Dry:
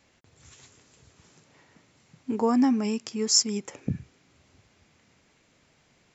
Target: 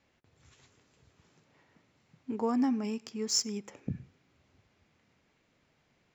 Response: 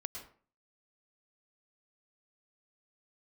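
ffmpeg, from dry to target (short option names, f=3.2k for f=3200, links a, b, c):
-filter_complex "[0:a]adynamicsmooth=sensitivity=5.5:basefreq=5.7k,asplit=2[a][b];[1:a]atrim=start_sample=2205,asetrate=52920,aresample=44100[c];[b][c]afir=irnorm=-1:irlink=0,volume=-15dB[d];[a][d]amix=inputs=2:normalize=0,volume=-7.5dB"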